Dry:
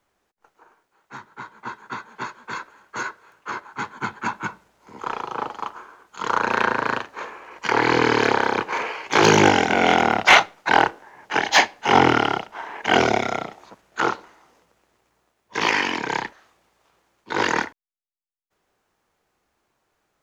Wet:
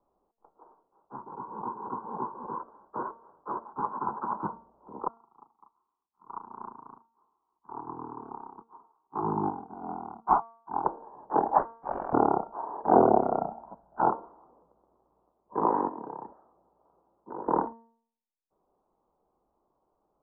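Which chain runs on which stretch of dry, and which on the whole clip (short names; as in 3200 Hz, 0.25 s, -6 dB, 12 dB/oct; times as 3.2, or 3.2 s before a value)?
1.26–2.6 inverse Chebyshev low-pass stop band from 3600 Hz, stop band 50 dB + notch comb 640 Hz + backwards sustainer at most 61 dB/s
3.8–4.41 HPF 85 Hz + bell 1200 Hz +6.5 dB 1.4 oct + negative-ratio compressor -26 dBFS
5.08–10.85 fixed phaser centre 2700 Hz, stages 8 + upward expander 2.5:1, over -33 dBFS
11.58–12.13 air absorption 150 m + inverted band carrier 3700 Hz
13.41–14.1 notch 500 Hz, Q 7.4 + comb 1.3 ms, depth 56%
15.88–17.48 HPF 59 Hz + notch 1100 Hz, Q 18 + compressor 12:1, threshold -31 dBFS
whole clip: steep low-pass 1100 Hz 48 dB/oct; bell 100 Hz -10.5 dB 0.79 oct; de-hum 229 Hz, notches 27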